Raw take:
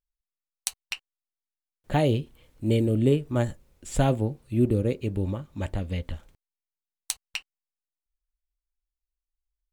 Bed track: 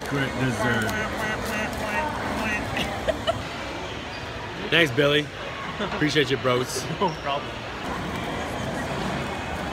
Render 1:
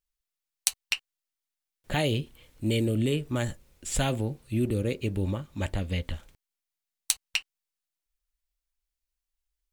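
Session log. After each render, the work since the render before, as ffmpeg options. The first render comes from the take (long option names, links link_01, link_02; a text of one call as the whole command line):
ffmpeg -i in.wav -filter_complex "[0:a]acrossover=split=1600[link_01][link_02];[link_01]alimiter=limit=-18.5dB:level=0:latency=1[link_03];[link_02]acontrast=37[link_04];[link_03][link_04]amix=inputs=2:normalize=0" out.wav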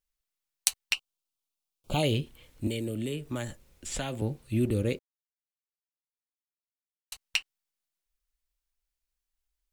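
ffmpeg -i in.wav -filter_complex "[0:a]asettb=1/sr,asplit=3[link_01][link_02][link_03];[link_01]atrim=end=0.944[link_04];[link_02]atrim=start=0.94:end=2.03,asetpts=PTS-STARTPTS,afade=type=in:duration=0.004:curve=qsin,afade=type=out:start_time=1.086:duration=0.004:curve=qsin,asuperstop=centerf=1800:order=4:qfactor=1.6[link_05];[link_03]atrim=start=2.026[link_06];[link_04][link_05]acrossfade=duration=0.004:curve1=hsin:curve2=qsin[link_07];[link_07][link_06]acrossfade=duration=0.004:curve1=qsin:curve2=hsin,asettb=1/sr,asplit=3[link_08][link_09][link_10];[link_08]atrim=end=2.674[link_11];[link_09]atrim=start=2.67:end=4.22,asetpts=PTS-STARTPTS,afade=type=in:duration=0.004:curve=qsin,afade=type=out:start_time=1.546:duration=0.004:curve=qsin,acrossover=split=210|7100[link_12][link_13][link_14];[link_12]acompressor=threshold=-39dB:ratio=4[link_15];[link_13]acompressor=threshold=-33dB:ratio=4[link_16];[link_14]acompressor=threshold=-48dB:ratio=4[link_17];[link_15][link_16][link_17]amix=inputs=3:normalize=0[link_18];[link_10]atrim=start=4.216[link_19];[link_11][link_18]acrossfade=duration=0.004:curve1=hsin:curve2=qsin[link_20];[link_20][link_19]acrossfade=duration=0.004:curve1=qsin:curve2=hsin,asplit=3[link_21][link_22][link_23];[link_21]atrim=end=4.99,asetpts=PTS-STARTPTS,afade=type=out:start_time=4.986:duration=0.004:curve=hsin[link_24];[link_22]atrim=start=4.99:end=7.12,asetpts=PTS-STARTPTS,volume=0[link_25];[link_23]atrim=start=7.12,asetpts=PTS-STARTPTS,afade=type=in:duration=0.004:curve=hsin[link_26];[link_24][link_25][link_26]concat=n=3:v=0:a=1" out.wav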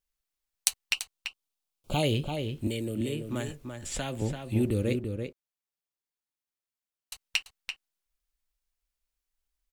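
ffmpeg -i in.wav -filter_complex "[0:a]asplit=2[link_01][link_02];[link_02]adelay=338.2,volume=-6dB,highshelf=frequency=4000:gain=-7.61[link_03];[link_01][link_03]amix=inputs=2:normalize=0" out.wav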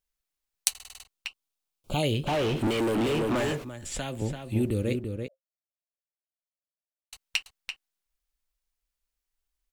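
ffmpeg -i in.wav -filter_complex "[0:a]asplit=3[link_01][link_02][link_03];[link_01]afade=type=out:start_time=2.26:duration=0.02[link_04];[link_02]asplit=2[link_05][link_06];[link_06]highpass=frequency=720:poles=1,volume=36dB,asoftclip=type=tanh:threshold=-18.5dB[link_07];[link_05][link_07]amix=inputs=2:normalize=0,lowpass=frequency=1500:poles=1,volume=-6dB,afade=type=in:start_time=2.26:duration=0.02,afade=type=out:start_time=3.63:duration=0.02[link_08];[link_03]afade=type=in:start_time=3.63:duration=0.02[link_09];[link_04][link_08][link_09]amix=inputs=3:normalize=0,asettb=1/sr,asplit=3[link_10][link_11][link_12];[link_10]atrim=end=5.284[link_13];[link_11]atrim=start=5.28:end=7.13,asetpts=PTS-STARTPTS,afade=type=in:duration=0.004:curve=qsin,afade=type=out:start_time=1.846:duration=0.004:curve=qsin,asuperpass=centerf=610:order=20:qfactor=3.6[link_14];[link_12]atrim=start=7.126[link_15];[link_13][link_14]acrossfade=duration=0.004:curve1=hsin:curve2=qsin[link_16];[link_16][link_15]acrossfade=duration=0.004:curve1=qsin:curve2=hsin,asplit=8[link_17][link_18][link_19][link_20][link_21][link_22][link_23][link_24];[link_17]atrim=end=0.752[link_25];[link_18]atrim=start=0.698:end=0.752[link_26];[link_19]atrim=start=0.698:end=0.752[link_27];[link_20]atrim=start=0.698:end=0.752[link_28];[link_21]atrim=start=0.698:end=0.752[link_29];[link_22]atrim=start=0.698:end=0.752[link_30];[link_23]atrim=start=0.698:end=0.752[link_31];[link_24]atrim=start=1.048[link_32];[link_25][link_26]acrossfade=duration=0.004:curve1=hsin:curve2=hsin[link_33];[link_33][link_27]acrossfade=duration=0.004:curve1=hsin:curve2=hsin[link_34];[link_34][link_28]acrossfade=duration=0.004:curve1=hsin:curve2=hsin[link_35];[link_35][link_29]acrossfade=duration=0.004:curve1=hsin:curve2=hsin[link_36];[link_36][link_30]acrossfade=duration=0.004:curve1=hsin:curve2=hsin[link_37];[link_37][link_31]acrossfade=duration=0.004:curve1=hsin:curve2=hsin[link_38];[link_38][link_32]acrossfade=duration=0.004:curve1=hsin:curve2=hsin" out.wav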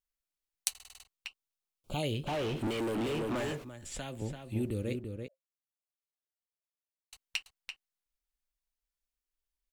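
ffmpeg -i in.wav -af "volume=-7dB" out.wav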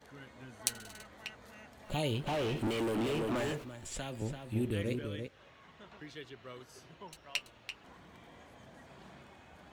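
ffmpeg -i in.wav -i bed.wav -filter_complex "[1:a]volume=-26.5dB[link_01];[0:a][link_01]amix=inputs=2:normalize=0" out.wav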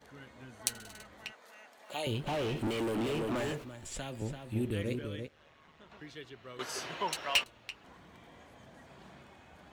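ffmpeg -i in.wav -filter_complex "[0:a]asettb=1/sr,asplit=3[link_01][link_02][link_03];[link_01]atrim=end=1.324[link_04];[link_02]atrim=start=1.32:end=2.07,asetpts=PTS-STARTPTS,afade=type=in:duration=0.004:curve=qsin,afade=type=out:start_time=0.746:duration=0.004:curve=qsin,highpass=480[link_05];[link_03]atrim=start=2.066[link_06];[link_04][link_05]acrossfade=duration=0.004:curve1=hsin:curve2=qsin[link_07];[link_07][link_06]acrossfade=duration=0.004:curve1=qsin:curve2=hsin,asplit=3[link_08][link_09][link_10];[link_08]afade=type=out:start_time=5.25:duration=0.02[link_11];[link_09]tremolo=f=150:d=0.621,afade=type=in:start_time=5.25:duration=0.02,afade=type=out:start_time=5.89:duration=0.02[link_12];[link_10]afade=type=in:start_time=5.89:duration=0.02[link_13];[link_11][link_12][link_13]amix=inputs=3:normalize=0,asettb=1/sr,asplit=3[link_14][link_15][link_16];[link_14]atrim=end=6.594[link_17];[link_15]atrim=start=6.59:end=7.44,asetpts=PTS-STARTPTS,afade=type=in:duration=0.004:curve=qsin,afade=type=out:start_time=0.846:duration=0.004:curve=qsin,asplit=2[link_18][link_19];[link_19]highpass=frequency=720:poles=1,volume=25dB,asoftclip=type=tanh:threshold=-15.5dB[link_20];[link_18][link_20]amix=inputs=2:normalize=0,lowpass=frequency=6800:poles=1,volume=-6dB[link_21];[link_16]atrim=start=7.436[link_22];[link_17][link_21]acrossfade=duration=0.004:curve1=hsin:curve2=qsin[link_23];[link_23][link_22]acrossfade=duration=0.004:curve1=qsin:curve2=hsin" out.wav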